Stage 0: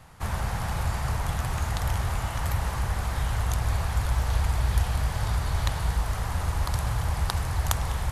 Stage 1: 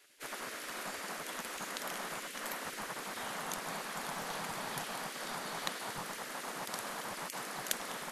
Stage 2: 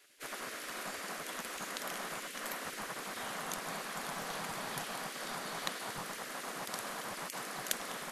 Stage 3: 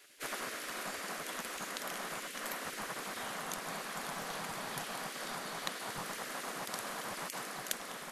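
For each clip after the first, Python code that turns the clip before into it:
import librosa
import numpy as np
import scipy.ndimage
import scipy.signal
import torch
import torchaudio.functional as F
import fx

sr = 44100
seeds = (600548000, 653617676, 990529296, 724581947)

y1 = fx.spec_gate(x, sr, threshold_db=-20, keep='weak')
y1 = y1 * 10.0 ** (-3.5 / 20.0)
y2 = fx.notch(y1, sr, hz=890.0, q=17.0)
y3 = fx.rider(y2, sr, range_db=10, speed_s=0.5)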